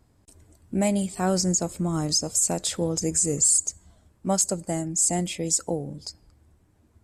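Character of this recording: noise floor -62 dBFS; spectral tilt -3.5 dB/oct

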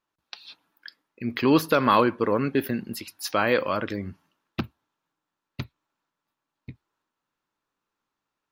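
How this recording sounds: noise floor -85 dBFS; spectral tilt -4.5 dB/oct

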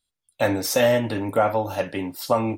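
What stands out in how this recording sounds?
noise floor -83 dBFS; spectral tilt -4.5 dB/oct

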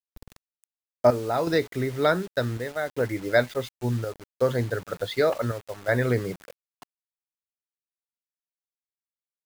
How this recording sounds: chopped level 0.68 Hz, depth 60%, duty 75%; a quantiser's noise floor 8-bit, dither none

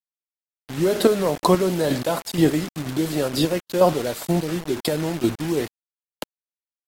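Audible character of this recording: chopped level 2.1 Hz, depth 60%, duty 25%; a quantiser's noise floor 6-bit, dither none; AAC

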